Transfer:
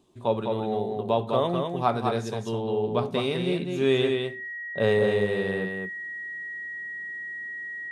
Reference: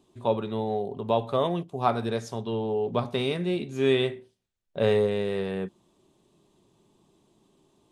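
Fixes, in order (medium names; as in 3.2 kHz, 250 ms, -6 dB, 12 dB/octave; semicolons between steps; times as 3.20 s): band-stop 1.9 kHz, Q 30; inverse comb 205 ms -4.5 dB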